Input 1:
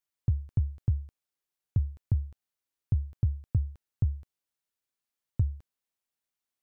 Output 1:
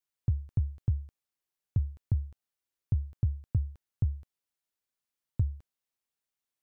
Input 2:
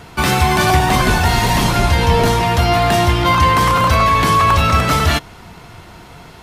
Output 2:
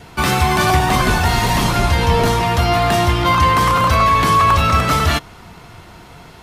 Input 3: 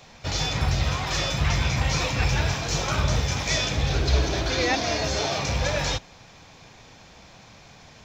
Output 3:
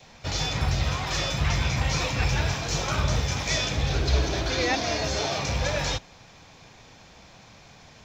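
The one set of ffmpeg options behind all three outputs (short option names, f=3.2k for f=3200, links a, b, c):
-af "adynamicequalizer=threshold=0.0251:dfrequency=1200:dqfactor=6.9:tfrequency=1200:tqfactor=6.9:attack=5:release=100:ratio=0.375:range=2:mode=boostabove:tftype=bell,volume=-1.5dB"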